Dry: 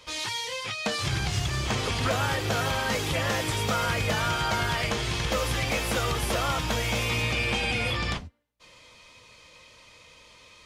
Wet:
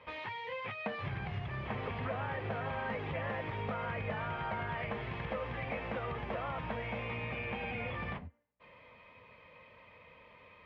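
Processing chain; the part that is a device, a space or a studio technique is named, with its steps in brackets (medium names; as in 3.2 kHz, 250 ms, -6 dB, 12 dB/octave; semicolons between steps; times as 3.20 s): bass amplifier (compression 5:1, threshold -32 dBFS, peak gain reduction 9.5 dB; cabinet simulation 63–2200 Hz, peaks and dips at 64 Hz -7 dB, 120 Hz -4 dB, 320 Hz -8 dB, 1.4 kHz -6 dB)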